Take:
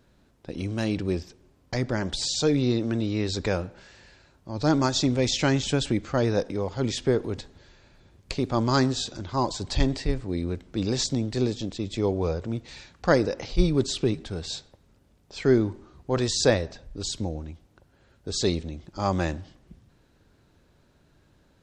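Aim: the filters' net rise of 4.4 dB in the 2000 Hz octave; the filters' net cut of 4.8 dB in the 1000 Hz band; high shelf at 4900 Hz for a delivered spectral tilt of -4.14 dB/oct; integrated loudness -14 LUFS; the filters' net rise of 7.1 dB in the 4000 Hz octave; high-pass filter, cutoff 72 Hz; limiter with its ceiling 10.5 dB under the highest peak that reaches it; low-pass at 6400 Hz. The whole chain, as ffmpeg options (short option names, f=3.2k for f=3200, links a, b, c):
-af "highpass=72,lowpass=6.4k,equalizer=f=1k:t=o:g=-9,equalizer=f=2k:t=o:g=6.5,equalizer=f=4k:t=o:g=4.5,highshelf=f=4.9k:g=7.5,volume=13.5dB,alimiter=limit=-2dB:level=0:latency=1"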